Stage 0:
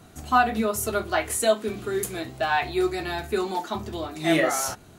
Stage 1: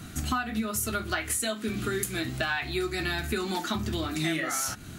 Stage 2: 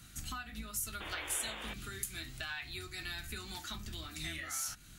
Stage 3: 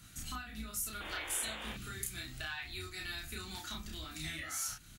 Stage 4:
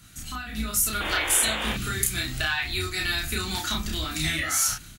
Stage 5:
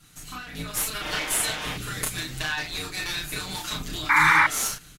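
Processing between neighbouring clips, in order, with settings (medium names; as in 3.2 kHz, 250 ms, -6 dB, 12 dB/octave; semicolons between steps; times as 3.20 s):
high-order bell 630 Hz -10 dB; compression 12:1, threshold -35 dBFS, peak gain reduction 17.5 dB; trim +9 dB
octave divider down 2 oct, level -1 dB; amplifier tone stack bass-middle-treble 5-5-5; painted sound noise, 1.00–1.74 s, 280–3700 Hz -44 dBFS; trim -1 dB
doubling 32 ms -2.5 dB; trim -2 dB
level rider gain up to 10.5 dB; trim +4.5 dB
comb filter that takes the minimum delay 6.6 ms; painted sound noise, 4.09–4.47 s, 820–2400 Hz -16 dBFS; resampled via 32 kHz; trim -1.5 dB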